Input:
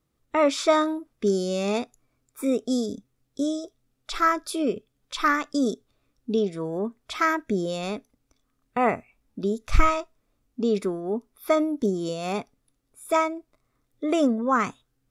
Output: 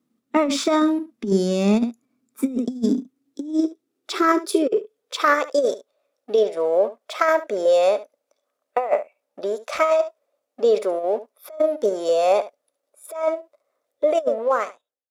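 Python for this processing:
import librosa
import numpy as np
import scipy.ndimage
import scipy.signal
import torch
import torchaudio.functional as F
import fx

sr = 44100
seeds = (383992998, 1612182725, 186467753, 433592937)

p1 = fx.fade_out_tail(x, sr, length_s=1.02)
p2 = fx.level_steps(p1, sr, step_db=11)
p3 = p1 + F.gain(torch.from_numpy(p2), 1.5).numpy()
p4 = fx.leveller(p3, sr, passes=1)
p5 = fx.filter_sweep_highpass(p4, sr, from_hz=230.0, to_hz=570.0, start_s=2.61, end_s=5.78, q=7.8)
p6 = p5 + fx.echo_single(p5, sr, ms=72, db=-15.5, dry=0)
p7 = fx.over_compress(p6, sr, threshold_db=-9.0, ratio=-0.5)
y = F.gain(torch.from_numpy(p7), -8.5).numpy()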